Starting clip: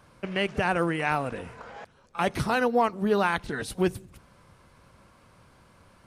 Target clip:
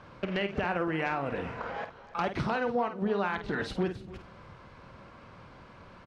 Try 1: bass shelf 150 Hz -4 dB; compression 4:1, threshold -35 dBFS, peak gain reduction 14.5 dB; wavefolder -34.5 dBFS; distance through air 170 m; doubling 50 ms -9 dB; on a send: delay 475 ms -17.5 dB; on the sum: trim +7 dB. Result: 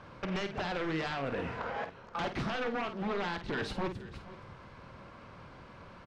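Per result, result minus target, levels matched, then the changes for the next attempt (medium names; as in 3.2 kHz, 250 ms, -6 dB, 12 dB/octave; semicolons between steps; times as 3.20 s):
wavefolder: distortion +21 dB; echo 181 ms late
change: wavefolder -26 dBFS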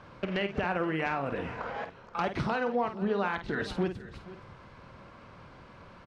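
echo 181 ms late
change: delay 294 ms -17.5 dB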